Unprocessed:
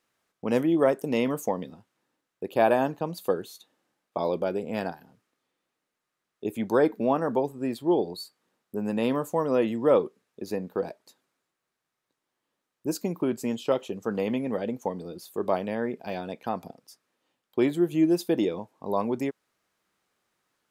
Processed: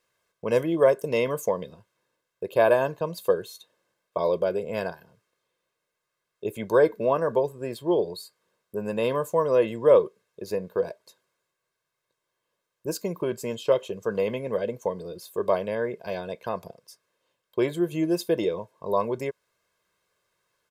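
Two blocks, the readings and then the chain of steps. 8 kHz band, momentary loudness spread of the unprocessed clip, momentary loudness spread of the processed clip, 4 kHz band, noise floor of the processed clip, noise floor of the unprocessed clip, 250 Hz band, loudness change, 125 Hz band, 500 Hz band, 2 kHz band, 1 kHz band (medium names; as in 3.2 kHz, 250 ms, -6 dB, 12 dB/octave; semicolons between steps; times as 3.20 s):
+1.5 dB, 13 LU, 14 LU, +1.0 dB, -82 dBFS, -84 dBFS, -4.0 dB, +1.5 dB, +0.5 dB, +3.5 dB, +2.5 dB, 0.0 dB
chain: comb 1.9 ms, depth 70%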